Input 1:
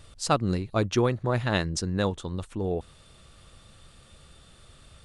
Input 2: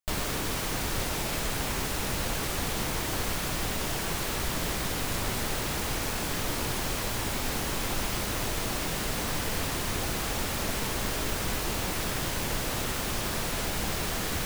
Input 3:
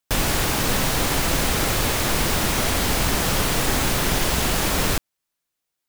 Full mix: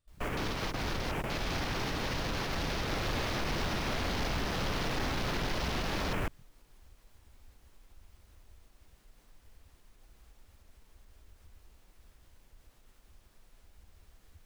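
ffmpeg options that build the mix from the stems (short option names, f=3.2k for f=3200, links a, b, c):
-filter_complex "[0:a]highshelf=f=8.9k:g=5.5,acompressor=threshold=-29dB:ratio=6,asoftclip=type=tanh:threshold=-34dB,volume=-15dB,asplit=2[a][b];[1:a]alimiter=limit=-21dB:level=0:latency=1:release=91,volume=2.5dB[c];[2:a]acontrast=86,asoftclip=type=tanh:threshold=-6dB,adelay=1300,volume=-13.5dB[d];[b]apad=whole_len=637593[e];[c][e]sidechaingate=range=-21dB:threshold=-60dB:ratio=16:detection=peak[f];[a][f][d]amix=inputs=3:normalize=0,afwtdn=0.0158,alimiter=level_in=1dB:limit=-24dB:level=0:latency=1:release=85,volume=-1dB"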